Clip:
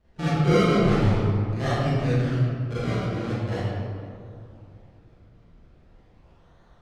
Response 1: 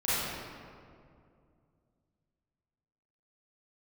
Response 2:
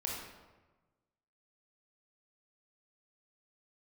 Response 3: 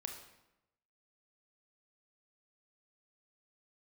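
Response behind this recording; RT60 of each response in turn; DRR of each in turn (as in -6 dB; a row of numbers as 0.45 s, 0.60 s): 1; 2.3 s, 1.2 s, 0.90 s; -13.0 dB, -3.0 dB, 3.5 dB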